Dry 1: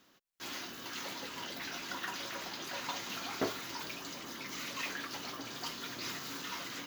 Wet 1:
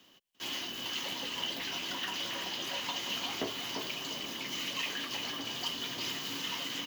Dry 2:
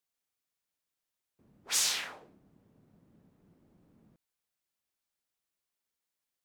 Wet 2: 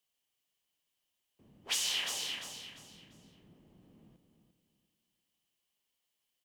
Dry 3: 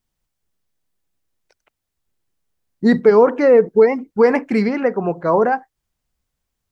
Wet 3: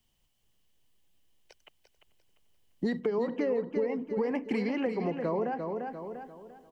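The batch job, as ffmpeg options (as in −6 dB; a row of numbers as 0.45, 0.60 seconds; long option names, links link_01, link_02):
-filter_complex "[0:a]acrossover=split=140|420[link_01][link_02][link_03];[link_01]acompressor=threshold=-45dB:ratio=4[link_04];[link_02]acompressor=threshold=-24dB:ratio=4[link_05];[link_03]acompressor=threshold=-28dB:ratio=4[link_06];[link_04][link_05][link_06]amix=inputs=3:normalize=0,equalizer=frequency=1400:width_type=o:width=0.29:gain=-7.5,asplit=2[link_07][link_08];[link_08]aecho=0:1:346|692|1038|1384:0.376|0.113|0.0338|0.0101[link_09];[link_07][link_09]amix=inputs=2:normalize=0,acompressor=threshold=-38dB:ratio=2,equalizer=frequency=3000:width_type=o:width=0.22:gain=12.5,asplit=2[link_10][link_11];[link_11]adelay=438,lowpass=frequency=2100:poles=1,volume=-20.5dB,asplit=2[link_12][link_13];[link_13]adelay=438,lowpass=frequency=2100:poles=1,volume=0.36,asplit=2[link_14][link_15];[link_15]adelay=438,lowpass=frequency=2100:poles=1,volume=0.36[link_16];[link_12][link_14][link_16]amix=inputs=3:normalize=0[link_17];[link_10][link_17]amix=inputs=2:normalize=0,volume=2.5dB"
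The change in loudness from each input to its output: +4.5, −4.0, −16.0 LU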